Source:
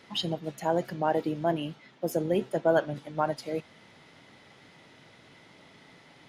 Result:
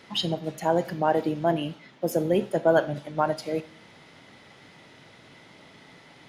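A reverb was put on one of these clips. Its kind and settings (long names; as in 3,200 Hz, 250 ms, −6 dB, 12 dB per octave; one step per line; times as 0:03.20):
four-comb reverb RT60 0.49 s, combs from 28 ms, DRR 15 dB
level +3.5 dB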